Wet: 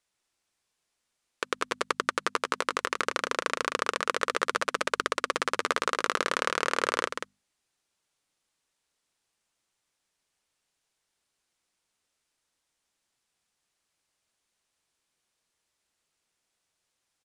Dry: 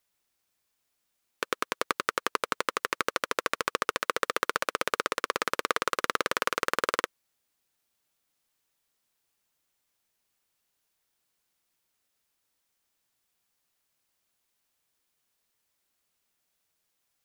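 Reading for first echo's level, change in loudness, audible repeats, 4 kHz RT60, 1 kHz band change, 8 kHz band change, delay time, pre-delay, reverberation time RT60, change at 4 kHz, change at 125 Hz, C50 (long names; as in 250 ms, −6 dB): −6.5 dB, +1.0 dB, 1, no reverb audible, +1.0 dB, +0.5 dB, 185 ms, no reverb audible, no reverb audible, +1.0 dB, 0.0 dB, no reverb audible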